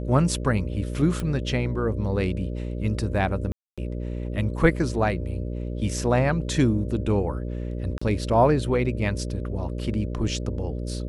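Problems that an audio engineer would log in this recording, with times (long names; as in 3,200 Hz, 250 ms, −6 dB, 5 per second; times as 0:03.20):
mains buzz 60 Hz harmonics 10 −30 dBFS
0:01.20: click −16 dBFS
0:03.52–0:03.78: drop-out 256 ms
0:07.98–0:08.02: drop-out 35 ms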